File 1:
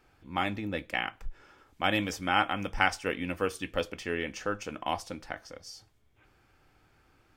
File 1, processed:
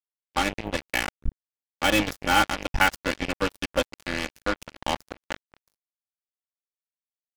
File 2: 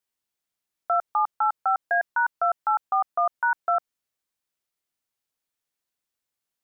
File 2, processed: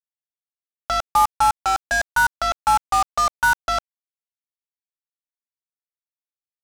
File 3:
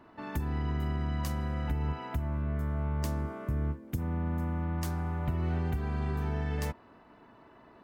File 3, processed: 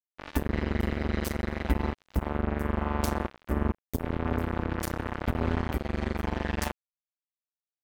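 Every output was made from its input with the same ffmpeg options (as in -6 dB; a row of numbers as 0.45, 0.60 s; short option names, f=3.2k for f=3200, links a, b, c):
-af "aeval=exprs='val(0)+0.01*(sin(2*PI*50*n/s)+sin(2*PI*2*50*n/s)/2+sin(2*PI*3*50*n/s)/3+sin(2*PI*4*50*n/s)/4+sin(2*PI*5*50*n/s)/5)':c=same,aecho=1:1:3.5:0.99,acrusher=bits=3:mix=0:aa=0.5,volume=2dB"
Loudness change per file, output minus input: +5.5, +4.5, +2.0 LU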